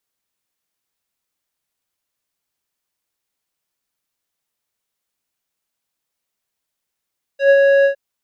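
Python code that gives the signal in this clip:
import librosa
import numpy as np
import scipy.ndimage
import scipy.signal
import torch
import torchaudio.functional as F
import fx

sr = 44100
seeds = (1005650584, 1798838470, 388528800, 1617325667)

y = fx.sub_voice(sr, note=73, wave='square', cutoff_hz=1500.0, q=1.2, env_oct=1.5, env_s=0.06, attack_ms=110.0, decay_s=0.06, sustain_db=-3.0, release_s=0.1, note_s=0.46, slope=12)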